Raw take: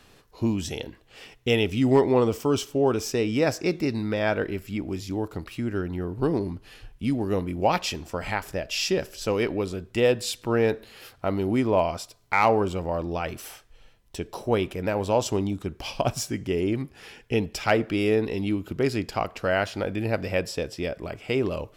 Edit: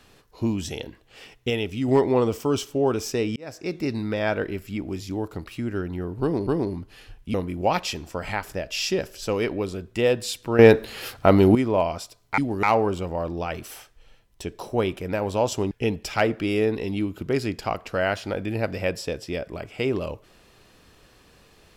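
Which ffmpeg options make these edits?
ffmpeg -i in.wav -filter_complex "[0:a]asplit=11[link_01][link_02][link_03][link_04][link_05][link_06][link_07][link_08][link_09][link_10][link_11];[link_01]atrim=end=1.502[link_12];[link_02]atrim=start=1.498:end=1.882,asetpts=PTS-STARTPTS,volume=-4dB[link_13];[link_03]atrim=start=1.878:end=3.36,asetpts=PTS-STARTPTS,afade=type=out:start_time=1.478:duration=0.004:curve=hsin[link_14];[link_04]atrim=start=3.36:end=6.472,asetpts=PTS-STARTPTS,afade=type=in:duration=0.55[link_15];[link_05]atrim=start=6.208:end=7.082[link_16];[link_06]atrim=start=7.328:end=10.582[link_17];[link_07]atrim=start=10.578:end=11.542,asetpts=PTS-STARTPTS,volume=10.5dB[link_18];[link_08]atrim=start=11.538:end=12.372[link_19];[link_09]atrim=start=7.078:end=7.332[link_20];[link_10]atrim=start=12.368:end=15.452[link_21];[link_11]atrim=start=17.208[link_22];[link_12][link_13]acrossfade=duration=0.004:curve1=hsin:curve2=hsin[link_23];[link_14][link_15]concat=n=2:v=0:a=1[link_24];[link_23][link_24]acrossfade=duration=0.004:curve1=hsin:curve2=hsin[link_25];[link_25][link_16]acrossfade=duration=0.004:curve1=hsin:curve2=hsin[link_26];[link_26][link_17]acrossfade=duration=0.004:curve1=hsin:curve2=hsin[link_27];[link_27][link_18]acrossfade=duration=0.004:curve1=hsin:curve2=hsin[link_28];[link_28][link_19]acrossfade=duration=0.004:curve1=hsin:curve2=hsin[link_29];[link_29][link_20]acrossfade=duration=0.004:curve1=hsin:curve2=hsin[link_30];[link_30][link_21]acrossfade=duration=0.004:curve1=hsin:curve2=hsin[link_31];[link_31][link_22]acrossfade=duration=0.004:curve1=hsin:curve2=hsin" out.wav

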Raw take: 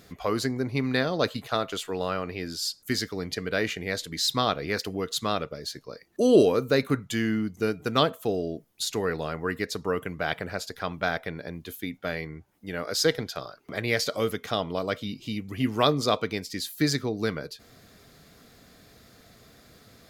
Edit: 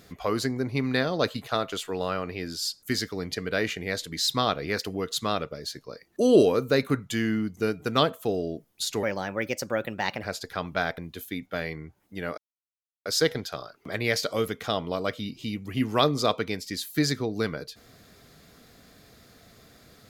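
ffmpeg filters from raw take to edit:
ffmpeg -i in.wav -filter_complex "[0:a]asplit=5[link_01][link_02][link_03][link_04][link_05];[link_01]atrim=end=9.034[link_06];[link_02]atrim=start=9.03:end=10.49,asetpts=PTS-STARTPTS,asetrate=53802,aresample=44100,atrim=end_sample=52775,asetpts=PTS-STARTPTS[link_07];[link_03]atrim=start=10.486:end=11.242[link_08];[link_04]atrim=start=11.488:end=12.89,asetpts=PTS-STARTPTS,afade=type=out:start_time=1.398:duration=0.004:curve=hsin,apad=pad_dur=0.68[link_09];[link_05]atrim=start=12.89,asetpts=PTS-STARTPTS,afade=type=in:duration=0.004:curve=hsin[link_10];[link_06][link_07]acrossfade=duration=0.004:curve1=hsin:curve2=hsin[link_11];[link_11][link_08]acrossfade=duration=0.004:curve1=hsin:curve2=hsin[link_12];[link_09][link_10]concat=n=2:v=0:a=1[link_13];[link_12][link_13]acrossfade=duration=0.004:curve1=hsin:curve2=hsin" out.wav

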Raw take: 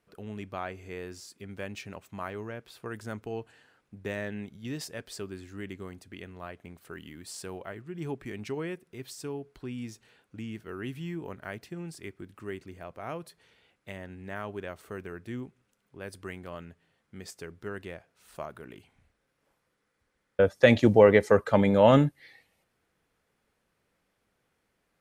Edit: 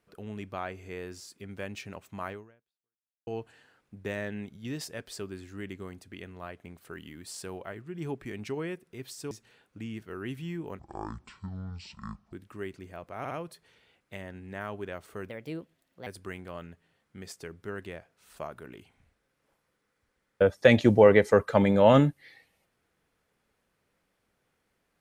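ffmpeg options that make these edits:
ffmpeg -i in.wav -filter_complex "[0:a]asplit=9[link_01][link_02][link_03][link_04][link_05][link_06][link_07][link_08][link_09];[link_01]atrim=end=3.27,asetpts=PTS-STARTPTS,afade=type=out:start_time=2.32:duration=0.95:curve=exp[link_10];[link_02]atrim=start=3.27:end=9.312,asetpts=PTS-STARTPTS,afade=type=in:duration=0.004:curve=hsin[link_11];[link_03]atrim=start=9.888:end=11.374[link_12];[link_04]atrim=start=11.37:end=12.2,asetpts=PTS-STARTPTS,asetrate=23814,aresample=44100,atrim=end_sample=67783,asetpts=PTS-STARTPTS[link_13];[link_05]atrim=start=12.196:end=13.122[link_14];[link_06]atrim=start=13.058:end=13.122[link_15];[link_07]atrim=start=13.058:end=15.054[link_16];[link_08]atrim=start=15.05:end=16.05,asetpts=PTS-STARTPTS,asetrate=57330,aresample=44100,atrim=end_sample=33923,asetpts=PTS-STARTPTS[link_17];[link_09]atrim=start=16.046[link_18];[link_10][link_11]concat=n=2:v=0:a=1[link_19];[link_19][link_12]acrossfade=duration=0.004:curve1=hsin:curve2=hsin[link_20];[link_20][link_13]acrossfade=duration=0.004:curve1=hsin:curve2=hsin[link_21];[link_21][link_14]acrossfade=duration=0.004:curve1=hsin:curve2=hsin[link_22];[link_22][link_15]acrossfade=duration=0.004:curve1=hsin:curve2=hsin[link_23];[link_23][link_16]acrossfade=duration=0.004:curve1=hsin:curve2=hsin[link_24];[link_24][link_17]acrossfade=duration=0.004:curve1=hsin:curve2=hsin[link_25];[link_25][link_18]acrossfade=duration=0.004:curve1=hsin:curve2=hsin" out.wav

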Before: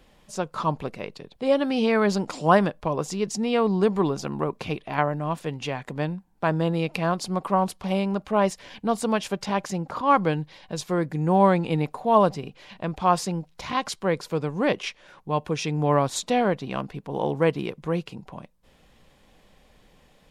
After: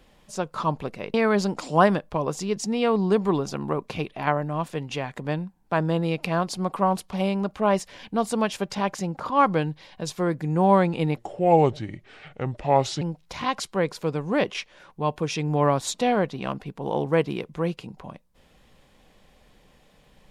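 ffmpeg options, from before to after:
ffmpeg -i in.wav -filter_complex "[0:a]asplit=4[link_01][link_02][link_03][link_04];[link_01]atrim=end=1.142[link_05];[link_02]atrim=start=1.848:end=11.884[link_06];[link_03]atrim=start=11.88:end=13.3,asetpts=PTS-STARTPTS,asetrate=33957,aresample=44100,atrim=end_sample=81327,asetpts=PTS-STARTPTS[link_07];[link_04]atrim=start=13.296[link_08];[link_05][link_06]acrossfade=duration=0.004:curve1=hsin:curve2=hsin[link_09];[link_09][link_07]acrossfade=duration=0.004:curve1=hsin:curve2=hsin[link_10];[link_10][link_08]acrossfade=duration=0.004:curve1=hsin:curve2=hsin" out.wav

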